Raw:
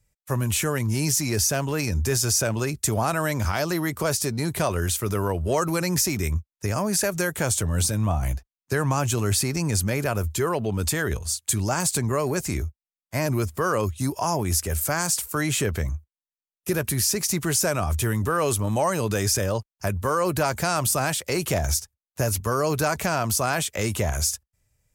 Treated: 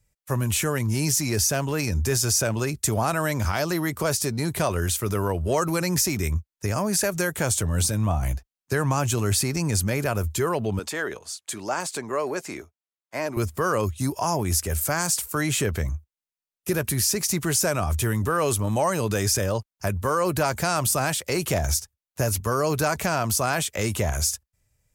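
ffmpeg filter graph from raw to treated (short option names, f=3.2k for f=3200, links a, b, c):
-filter_complex "[0:a]asettb=1/sr,asplit=3[a][b][c];[a]atrim=end=10.794[d];[b]atrim=start=10.79:end=13.37,asetpts=PTS-STARTPTS,afade=t=in:d=0.004:c=qsin,afade=t=out:st=2.576:d=0.004:c=qsin,highpass=350,aemphasis=mode=reproduction:type=50kf[e];[c]atrim=start=13.366[f];[d][e]acrossfade=d=0.004:c1=hsin:c2=qsin[g];[g][f]acrossfade=d=0.004:c1=qsin:c2=hsin"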